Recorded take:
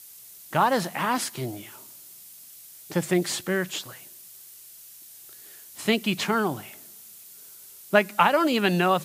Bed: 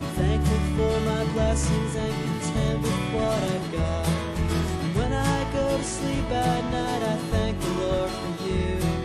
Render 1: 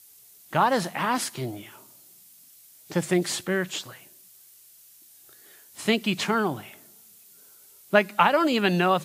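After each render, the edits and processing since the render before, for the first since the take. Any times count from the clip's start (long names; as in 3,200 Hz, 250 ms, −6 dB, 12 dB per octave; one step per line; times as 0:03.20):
noise reduction from a noise print 6 dB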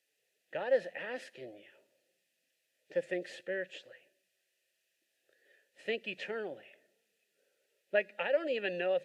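formant filter e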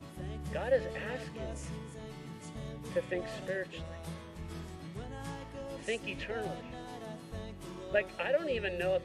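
mix in bed −18.5 dB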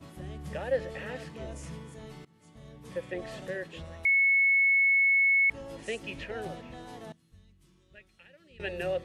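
0:02.25–0:03.28: fade in, from −22.5 dB
0:04.05–0:05.50: beep over 2,200 Hz −20 dBFS
0:07.12–0:08.60: guitar amp tone stack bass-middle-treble 6-0-2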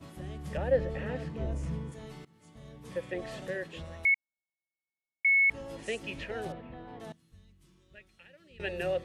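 0:00.57–0:01.92: spectral tilt −2.5 dB per octave
0:04.14–0:05.25: Chebyshev low-pass with heavy ripple 910 Hz, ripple 3 dB
0:06.52–0:07.00: high-frequency loss of the air 430 metres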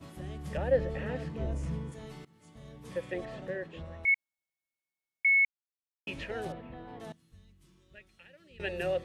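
0:03.25–0:04.08: low-pass filter 1,600 Hz 6 dB per octave
0:05.45–0:06.07: silence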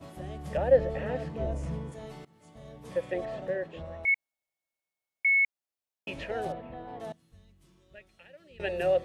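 parametric band 650 Hz +8 dB 0.91 octaves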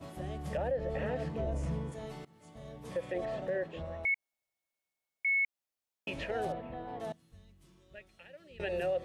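downward compressor 2.5 to 1, threshold −27 dBFS, peak gain reduction 8.5 dB
brickwall limiter −25.5 dBFS, peak gain reduction 7.5 dB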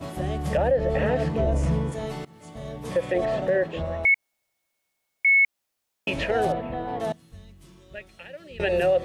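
level +11.5 dB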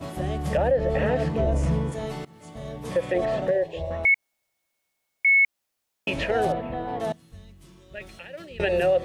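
0:03.51–0:03.91: phaser with its sweep stopped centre 560 Hz, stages 4
0:07.97–0:08.65: transient designer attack +2 dB, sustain +8 dB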